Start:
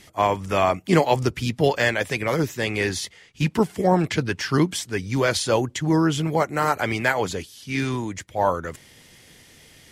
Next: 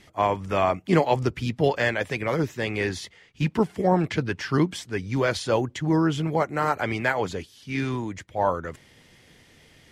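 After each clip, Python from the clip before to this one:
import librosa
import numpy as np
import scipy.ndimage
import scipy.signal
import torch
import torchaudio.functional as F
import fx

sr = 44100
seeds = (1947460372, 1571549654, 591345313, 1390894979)

y = fx.high_shelf(x, sr, hz=5400.0, db=-11.5)
y = y * librosa.db_to_amplitude(-2.0)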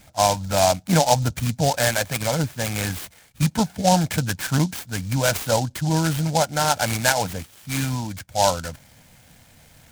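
y = x + 0.88 * np.pad(x, (int(1.3 * sr / 1000.0), 0))[:len(x)]
y = fx.noise_mod_delay(y, sr, seeds[0], noise_hz=5200.0, depth_ms=0.082)
y = y * librosa.db_to_amplitude(1.0)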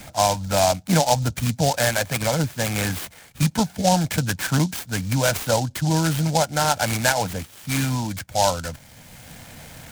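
y = fx.band_squash(x, sr, depth_pct=40)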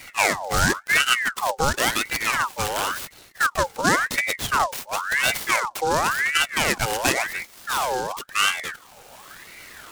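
y = fx.ring_lfo(x, sr, carrier_hz=1400.0, swing_pct=55, hz=0.94)
y = y * librosa.db_to_amplitude(1.5)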